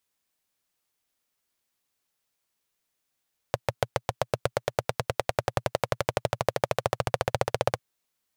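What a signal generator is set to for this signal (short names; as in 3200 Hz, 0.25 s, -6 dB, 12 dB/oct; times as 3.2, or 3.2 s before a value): single-cylinder engine model, changing speed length 4.25 s, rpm 800, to 1900, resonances 120/550 Hz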